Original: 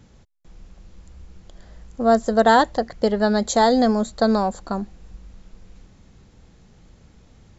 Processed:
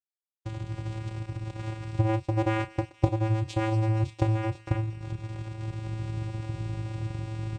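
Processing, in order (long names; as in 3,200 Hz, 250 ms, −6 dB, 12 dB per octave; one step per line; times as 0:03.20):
camcorder AGC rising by 70 dB per second
noise gate −23 dBFS, range −28 dB
low-shelf EQ 250 Hz −3.5 dB
hum removal 198.3 Hz, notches 33
log-companded quantiser 4 bits
channel vocoder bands 4, square 110 Hz
double-tracking delay 32 ms −11.5 dB
on a send: delay with a high-pass on its return 236 ms, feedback 68%, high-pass 2,900 Hz, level −12.5 dB
on the sum: level −6 dB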